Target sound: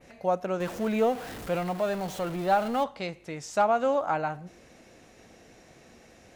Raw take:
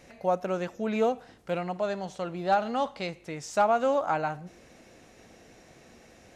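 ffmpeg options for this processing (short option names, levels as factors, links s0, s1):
-filter_complex "[0:a]asettb=1/sr,asplit=3[s0][s1][s2];[s0]atrim=end=0.604[s3];[s1]atrim=start=0.6:end=2.84,asetpts=PTS-STARTPTS,afade=t=in:d=0.004:c=qsin,afade=t=out:st=2.236:d=0.004:c=qsin,aeval=exprs='val(0)+0.5*0.0188*sgn(val(0))':c=same[s4];[s2]atrim=start=2.836[s5];[s3][s4]acrossfade=d=0.004:c1=hsin:c2=qsin[s6];[s6][s5]acrossfade=d=0.004:c1=qsin:c2=hsin,adynamicequalizer=threshold=0.00447:dfrequency=5700:dqfactor=0.73:tfrequency=5700:tqfactor=0.73:attack=5:release=100:ratio=0.375:range=2:mode=cutabove:tftype=bell"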